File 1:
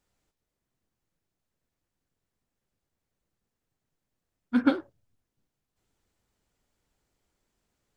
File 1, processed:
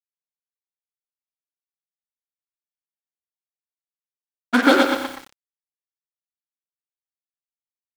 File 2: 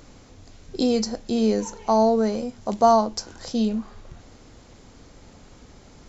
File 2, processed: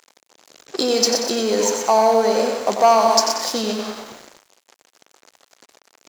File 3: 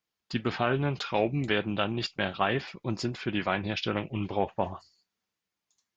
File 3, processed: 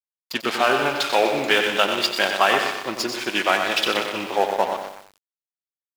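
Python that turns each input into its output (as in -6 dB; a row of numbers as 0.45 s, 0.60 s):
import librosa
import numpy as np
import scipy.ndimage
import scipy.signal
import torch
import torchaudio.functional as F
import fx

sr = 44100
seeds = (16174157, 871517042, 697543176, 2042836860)

p1 = x + fx.echo_feedback(x, sr, ms=123, feedback_pct=49, wet_db=-8.5, dry=0)
p2 = np.sign(p1) * np.maximum(np.abs(p1) - 10.0 ** (-42.0 / 20.0), 0.0)
p3 = fx.over_compress(p2, sr, threshold_db=-25.0, ratio=-0.5)
p4 = p2 + F.gain(torch.from_numpy(p3), -2.0).numpy()
p5 = fx.leveller(p4, sr, passes=1)
p6 = scipy.signal.sosfilt(scipy.signal.butter(2, 450.0, 'highpass', fs=sr, output='sos'), p5)
p7 = fx.high_shelf(p6, sr, hz=2500.0, db=3.0)
p8 = fx.echo_crushed(p7, sr, ms=92, feedback_pct=55, bits=7, wet_db=-8.0)
y = p8 * 10.0 ** (-2 / 20.0) / np.max(np.abs(p8))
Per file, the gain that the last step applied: +10.5 dB, +1.5 dB, +2.5 dB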